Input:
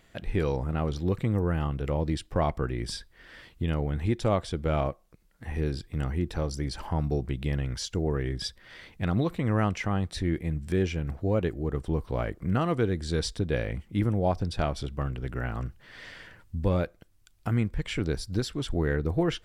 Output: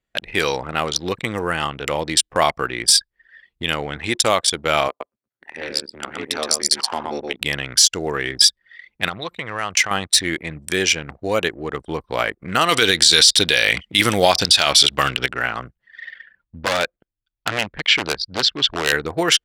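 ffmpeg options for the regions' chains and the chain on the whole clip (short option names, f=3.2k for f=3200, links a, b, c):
-filter_complex "[0:a]asettb=1/sr,asplit=3[a][b][c];[a]atrim=end=4.884[d];[b]atrim=start=4.88:end=7.41,asetpts=PTS-STARTPTS,afade=t=in:d=0.004:c=qsin,afade=t=out:st=2.526:d=0.004:c=qsin,highpass=f=180:w=0.5412,highpass=f=180:w=1.3066,aeval=exprs='val(0)*sin(2*PI*76*n/s)':c=same,aecho=1:1:121:0.708,atrim=end_sample=111573[e];[c]atrim=start=7.406[f];[d][e]acrossfade=d=0.004:c1=hsin:c2=qsin[g];[g][f]acrossfade=d=0.004:c1=qsin:c2=hsin,asettb=1/sr,asplit=3[h][i][j];[h]atrim=end=9.084[k];[i]atrim=start=9.08:end=9.91,asetpts=PTS-STARTPTS,afade=t=in:d=0.004:c=qsin,afade=t=out:st=0.826:d=0.004:c=qsin,highpass=f=42:w=0.5412,highpass=f=42:w=1.3066,equalizer=f=260:w=1.8:g=-8.5,acompressor=threshold=-29dB:ratio=8:attack=3.2:release=140:knee=1:detection=peak[l];[j]atrim=start=9.906[m];[k][l]acrossfade=d=0.004:c1=hsin:c2=qsin[n];[n][m]acrossfade=d=0.004:c1=qsin:c2=hsin,asettb=1/sr,asplit=3[o][p][q];[o]atrim=end=12.694[r];[p]atrim=start=12.69:end=15.26,asetpts=PTS-STARTPTS,afade=t=in:d=0.004:c=qsin,afade=t=out:st=2.566:d=0.004:c=qsin,equalizer=f=3.7k:w=0.78:g=9.5,acontrast=62[s];[q]atrim=start=15.256[t];[r][s]acrossfade=d=0.004:c1=hsin:c2=qsin[u];[u][t]acrossfade=d=0.004:c1=qsin:c2=hsin,asettb=1/sr,asplit=3[v][w][x];[v]atrim=end=16.004[y];[w]atrim=start=16:end=18.92,asetpts=PTS-STARTPTS,afade=t=in:d=0.004:c=qsin,afade=t=out:st=2.916:d=0.004:c=qsin,lowpass=f=4.5k:w=0.5412,lowpass=f=4.5k:w=1.3066,aeval=exprs='0.075*(abs(mod(val(0)/0.075+3,4)-2)-1)':c=same[z];[x]atrim=start=18.916[aa];[y][z]acrossfade=d=0.004:c1=hsin:c2=qsin[ab];[ab][aa]acrossfade=d=0.004:c1=qsin:c2=hsin,anlmdn=0.631,aderivative,alimiter=level_in=31dB:limit=-1dB:release=50:level=0:latency=1,volume=-1dB"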